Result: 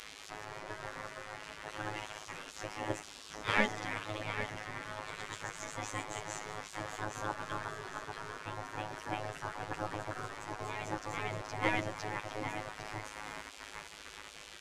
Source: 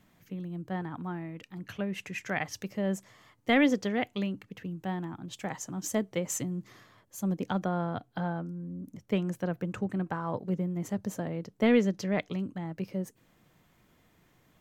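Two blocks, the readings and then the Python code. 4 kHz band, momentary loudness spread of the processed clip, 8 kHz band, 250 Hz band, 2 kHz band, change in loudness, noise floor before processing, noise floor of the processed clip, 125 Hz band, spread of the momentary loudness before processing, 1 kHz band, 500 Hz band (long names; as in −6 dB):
−1.0 dB, 11 LU, −5.5 dB, −15.5 dB, −0.5 dB, −7.5 dB, −66 dBFS, −51 dBFS, −10.0 dB, 14 LU, 0.0 dB, −8.5 dB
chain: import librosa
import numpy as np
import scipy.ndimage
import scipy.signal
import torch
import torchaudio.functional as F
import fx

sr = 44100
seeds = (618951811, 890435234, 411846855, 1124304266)

p1 = fx.delta_mod(x, sr, bps=64000, step_db=-38.5)
p2 = fx.echo_pitch(p1, sr, ms=168, semitones=1, count=2, db_per_echo=-3.0)
p3 = fx.level_steps(p2, sr, step_db=23)
p4 = p2 + (p3 * librosa.db_to_amplitude(-2.0))
p5 = fx.high_shelf(p4, sr, hz=2500.0, db=-11.5)
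p6 = p5 + fx.echo_feedback(p5, sr, ms=803, feedback_pct=36, wet_db=-10, dry=0)
p7 = fx.robotise(p6, sr, hz=106.0)
p8 = scipy.signal.sosfilt(scipy.signal.butter(2, 7400.0, 'lowpass', fs=sr, output='sos'), p7)
p9 = fx.spec_gate(p8, sr, threshold_db=-20, keep='weak')
p10 = fx.dynamic_eq(p9, sr, hz=3400.0, q=0.76, threshold_db=-56.0, ratio=4.0, max_db=-5)
y = p10 * librosa.db_to_amplitude(7.0)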